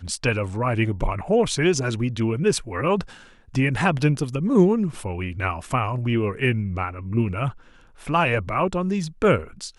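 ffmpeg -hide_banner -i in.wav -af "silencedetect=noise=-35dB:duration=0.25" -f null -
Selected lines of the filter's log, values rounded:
silence_start: 3.13
silence_end: 3.54 | silence_duration: 0.41
silence_start: 7.52
silence_end: 8.01 | silence_duration: 0.49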